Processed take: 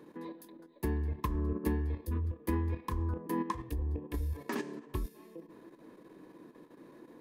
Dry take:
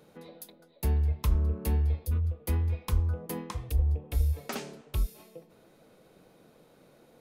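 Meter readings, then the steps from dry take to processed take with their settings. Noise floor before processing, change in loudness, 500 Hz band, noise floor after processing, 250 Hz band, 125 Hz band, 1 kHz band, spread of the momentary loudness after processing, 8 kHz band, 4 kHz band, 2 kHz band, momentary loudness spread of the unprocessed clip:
-61 dBFS, -5.5 dB, +1.0 dB, -58 dBFS, +4.5 dB, -7.5 dB, +3.5 dB, 21 LU, -8.5 dB, -8.0 dB, 0.0 dB, 11 LU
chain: level quantiser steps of 10 dB; small resonant body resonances 310/1000/1700 Hz, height 18 dB, ringing for 25 ms; gain -4 dB

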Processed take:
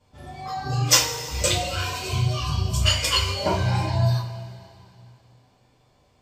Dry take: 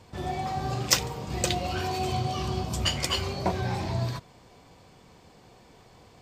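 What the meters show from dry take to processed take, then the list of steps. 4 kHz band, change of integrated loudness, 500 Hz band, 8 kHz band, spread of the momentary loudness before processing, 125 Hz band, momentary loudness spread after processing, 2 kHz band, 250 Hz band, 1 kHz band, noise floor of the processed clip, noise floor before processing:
+7.0 dB, +6.0 dB, +3.0 dB, +7.5 dB, 8 LU, +7.5 dB, 16 LU, +6.0 dB, +0.5 dB, +2.0 dB, -61 dBFS, -55 dBFS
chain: spectral noise reduction 15 dB; two-slope reverb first 0.34 s, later 2.8 s, from -18 dB, DRR -8.5 dB; gain -2 dB

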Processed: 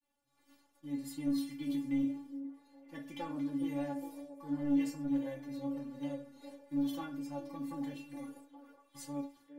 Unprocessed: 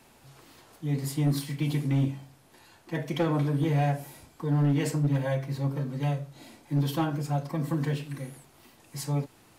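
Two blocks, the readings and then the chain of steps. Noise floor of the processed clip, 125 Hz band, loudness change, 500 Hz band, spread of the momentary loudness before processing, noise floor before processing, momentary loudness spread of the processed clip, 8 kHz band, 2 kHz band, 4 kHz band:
-74 dBFS, -24.0 dB, -9.0 dB, -12.0 dB, 12 LU, -58 dBFS, 17 LU, under -10 dB, -13.0 dB, -11.5 dB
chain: metallic resonator 280 Hz, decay 0.23 s, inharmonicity 0.002; expander -59 dBFS; delay with a stepping band-pass 0.411 s, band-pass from 400 Hz, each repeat 0.7 oct, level -7 dB; gain +1.5 dB

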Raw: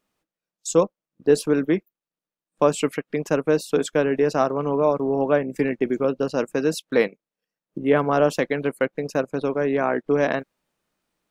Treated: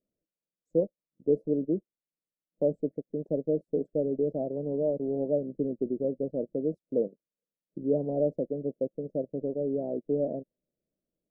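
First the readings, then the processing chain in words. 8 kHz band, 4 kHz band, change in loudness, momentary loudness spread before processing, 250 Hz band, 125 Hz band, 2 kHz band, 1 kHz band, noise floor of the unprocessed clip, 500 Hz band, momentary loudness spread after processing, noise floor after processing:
under -40 dB, under -40 dB, -8.0 dB, 6 LU, -7.0 dB, -7.5 dB, under -40 dB, -22.0 dB, under -85 dBFS, -8.0 dB, 6 LU, under -85 dBFS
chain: elliptic low-pass 610 Hz, stop band 50 dB; gain -7 dB

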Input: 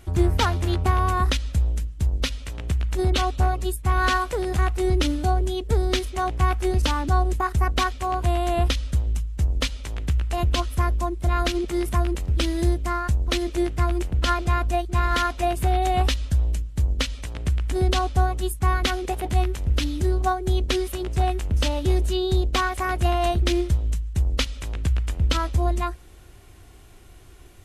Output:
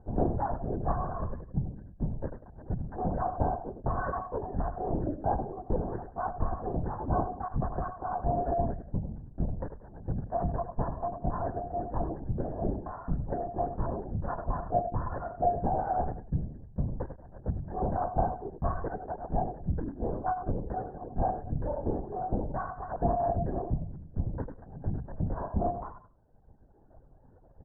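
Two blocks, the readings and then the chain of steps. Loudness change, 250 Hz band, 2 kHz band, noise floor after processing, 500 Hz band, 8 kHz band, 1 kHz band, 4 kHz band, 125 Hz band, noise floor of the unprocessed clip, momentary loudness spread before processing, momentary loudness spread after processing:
-9.5 dB, -7.5 dB, -19.5 dB, -56 dBFS, -6.0 dB, under -40 dB, -6.5 dB, under -40 dB, -10.5 dB, -46 dBFS, 5 LU, 7 LU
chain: minimum comb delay 7.2 ms; reverb removal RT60 1.5 s; steep low-pass 1600 Hz 96 dB/oct; fixed phaser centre 350 Hz, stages 6; feedback echo 91 ms, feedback 24%, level -9 dB; LPC vocoder at 8 kHz whisper

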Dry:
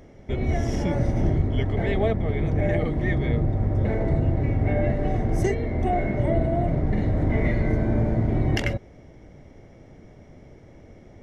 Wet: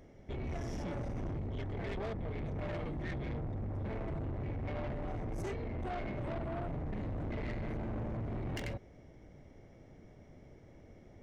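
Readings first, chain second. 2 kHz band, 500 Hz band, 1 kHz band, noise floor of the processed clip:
-14.0 dB, -15.0 dB, -13.0 dB, -57 dBFS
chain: soft clip -27 dBFS, distortion -8 dB; gain -8.5 dB

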